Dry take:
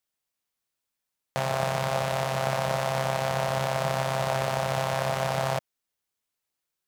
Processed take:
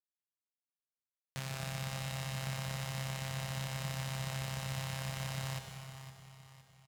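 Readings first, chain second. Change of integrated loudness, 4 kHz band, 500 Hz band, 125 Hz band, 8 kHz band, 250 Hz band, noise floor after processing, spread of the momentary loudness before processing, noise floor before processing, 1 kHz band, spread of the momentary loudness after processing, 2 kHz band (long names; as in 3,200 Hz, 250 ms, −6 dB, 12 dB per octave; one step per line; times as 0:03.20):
−12.0 dB, −7.5 dB, −21.5 dB, −6.0 dB, −6.0 dB, −7.5 dB, below −85 dBFS, 2 LU, −85 dBFS, −18.5 dB, 12 LU, −11.0 dB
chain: mu-law and A-law mismatch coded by A
guitar amp tone stack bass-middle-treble 6-0-2
on a send: repeating echo 511 ms, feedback 43%, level −12 dB
on the sum: dense smooth reverb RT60 2.3 s, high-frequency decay 0.7×, pre-delay 90 ms, DRR 6.5 dB
level +8 dB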